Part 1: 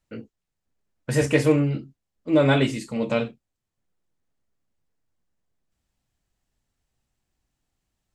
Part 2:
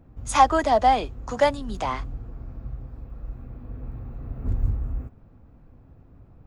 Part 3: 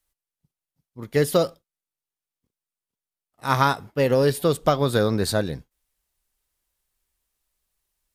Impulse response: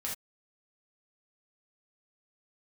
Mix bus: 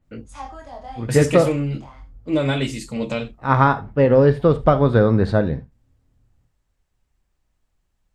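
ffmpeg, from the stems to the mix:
-filter_complex "[0:a]alimiter=limit=-11.5dB:level=0:latency=1:release=413,adynamicequalizer=threshold=0.00708:dfrequency=2300:dqfactor=0.7:tfrequency=2300:tqfactor=0.7:attack=5:release=100:ratio=0.375:range=3:mode=boostabove:tftype=highshelf,volume=-0.5dB[link_01];[1:a]flanger=delay=20:depth=6.3:speed=0.42,volume=-19dB,asplit=2[link_02][link_03];[link_03]volume=-3.5dB[link_04];[2:a]lowpass=1800,volume=2.5dB,asplit=2[link_05][link_06];[link_06]volume=-10.5dB[link_07];[3:a]atrim=start_sample=2205[link_08];[link_04][link_07]amix=inputs=2:normalize=0[link_09];[link_09][link_08]afir=irnorm=-1:irlink=0[link_10];[link_01][link_02][link_05][link_10]amix=inputs=4:normalize=0,lowshelf=frequency=120:gain=7.5"

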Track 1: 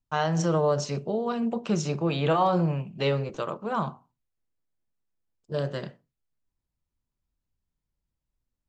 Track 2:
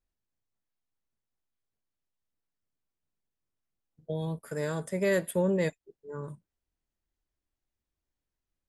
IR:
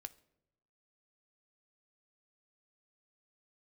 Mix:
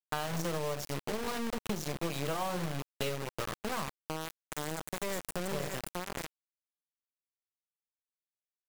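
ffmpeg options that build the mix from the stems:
-filter_complex "[0:a]highpass=100,volume=1dB[link_01];[1:a]equalizer=frequency=7500:width=2.1:gain=11,bandreject=frequency=71.77:width_type=h:width=4,bandreject=frequency=143.54:width_type=h:width=4,bandreject=frequency=215.31:width_type=h:width=4,bandreject=frequency=287.08:width_type=h:width=4,bandreject=frequency=358.85:width_type=h:width=4,bandreject=frequency=430.62:width_type=h:width=4,bandreject=frequency=502.39:width_type=h:width=4,volume=-5dB,asplit=3[link_02][link_03][link_04];[link_03]volume=-8.5dB[link_05];[link_04]volume=-4dB[link_06];[2:a]atrim=start_sample=2205[link_07];[link_05][link_07]afir=irnorm=-1:irlink=0[link_08];[link_06]aecho=0:1:581:1[link_09];[link_01][link_02][link_08][link_09]amix=inputs=4:normalize=0,acrusher=bits=4:mix=0:aa=0.000001,aeval=exprs='0.282*(cos(1*acos(clip(val(0)/0.282,-1,1)))-cos(1*PI/2))+0.00891*(cos(3*acos(clip(val(0)/0.282,-1,1)))-cos(3*PI/2))+0.00794*(cos(4*acos(clip(val(0)/0.282,-1,1)))-cos(4*PI/2))+0.0178*(cos(7*acos(clip(val(0)/0.282,-1,1)))-cos(7*PI/2))+0.0251*(cos(8*acos(clip(val(0)/0.282,-1,1)))-cos(8*PI/2))':channel_layout=same,acompressor=threshold=-31dB:ratio=6"

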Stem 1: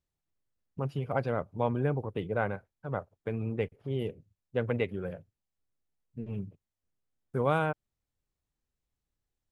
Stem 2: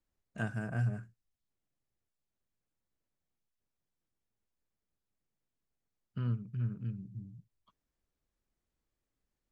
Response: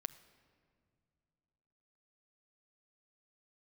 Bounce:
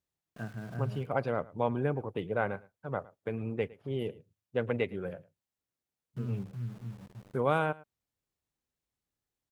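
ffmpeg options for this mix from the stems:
-filter_complex "[0:a]highpass=frequency=140:poles=1,volume=0dB,asplit=2[link_01][link_02];[link_02]volume=-21.5dB[link_03];[1:a]highshelf=frequency=2100:gain=-10.5,bandreject=frequency=50:width_type=h:width=6,bandreject=frequency=100:width_type=h:width=6,bandreject=frequency=150:width_type=h:width=6,bandreject=frequency=200:width_type=h:width=6,aeval=exprs='val(0)*gte(abs(val(0)),0.00447)':channel_layout=same,volume=-3dB,asplit=2[link_04][link_05];[link_05]volume=-21.5dB[link_06];[link_03][link_06]amix=inputs=2:normalize=0,aecho=0:1:109:1[link_07];[link_01][link_04][link_07]amix=inputs=3:normalize=0"

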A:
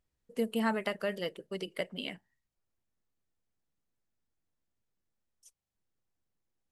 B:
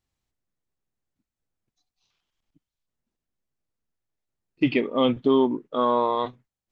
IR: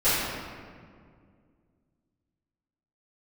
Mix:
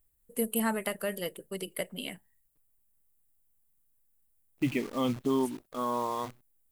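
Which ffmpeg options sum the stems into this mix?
-filter_complex "[0:a]aexciter=amount=8:drive=6:freq=8000,lowshelf=frequency=60:gain=12,volume=0dB,asplit=2[link_01][link_02];[1:a]equalizer=frequency=125:width_type=o:width=1:gain=4,equalizer=frequency=500:width_type=o:width=1:gain=-5,equalizer=frequency=4000:width_type=o:width=1:gain=-6,acrusher=bits=7:dc=4:mix=0:aa=0.000001,volume=-6.5dB[link_03];[link_02]apad=whole_len=295990[link_04];[link_03][link_04]sidechaincompress=threshold=-46dB:ratio=8:attack=22:release=1240[link_05];[link_01][link_05]amix=inputs=2:normalize=0"

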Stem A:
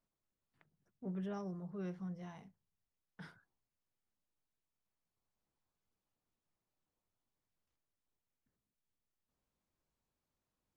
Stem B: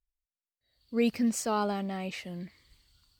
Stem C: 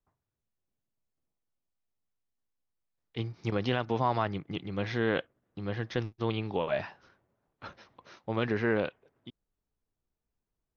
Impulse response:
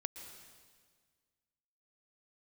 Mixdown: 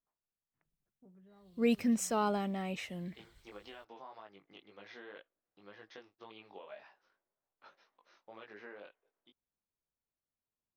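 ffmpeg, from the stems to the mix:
-filter_complex "[0:a]lowpass=2400,acompressor=threshold=-48dB:ratio=10,volume=-10.5dB[link_01];[1:a]bandreject=frequency=4600:width=5.4,adelay=650,volume=-2.5dB[link_02];[2:a]highpass=430,acompressor=threshold=-33dB:ratio=6,flanger=delay=18.5:depth=2.4:speed=1.9,volume=-10.5dB[link_03];[link_01][link_02][link_03]amix=inputs=3:normalize=0"

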